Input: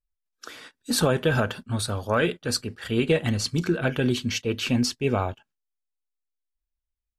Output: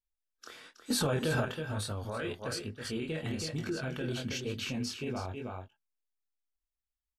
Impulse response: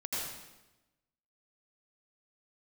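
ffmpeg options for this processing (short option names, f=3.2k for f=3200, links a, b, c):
-filter_complex "[0:a]flanger=delay=19.5:depth=6.3:speed=1.1,aecho=1:1:322:0.355,alimiter=limit=-22dB:level=0:latency=1:release=51,asettb=1/sr,asplit=3[a][b][c];[a]atrim=end=0.904[d];[b]atrim=start=0.9:end=1.45,asetpts=PTS-STARTPTS,afade=t=in:d=0.004:c=qsin,afade=t=out:st=0.546:d=0.004:c=qsin,acontrast=35[e];[c]atrim=start=1.446[f];[d][e]acrossfade=d=0.004:c1=hsin:c2=qsin[g];[g][f]acrossfade=d=0.004:c1=qsin:c2=hsin,volume=-4.5dB"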